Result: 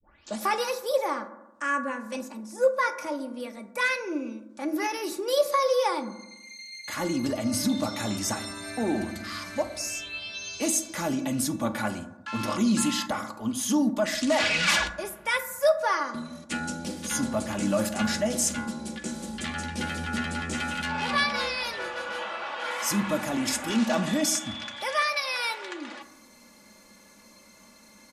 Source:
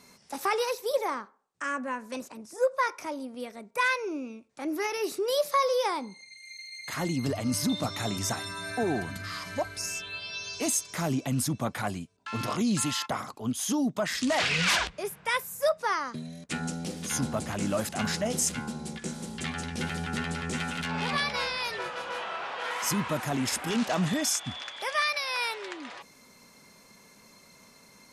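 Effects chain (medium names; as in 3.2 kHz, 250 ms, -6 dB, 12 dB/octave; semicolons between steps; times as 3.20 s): tape start-up on the opening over 0.43 s; comb 3.5 ms, depth 56%; on a send: peaking EQ 6.9 kHz +6 dB + reverberation RT60 0.95 s, pre-delay 5 ms, DRR 8.5 dB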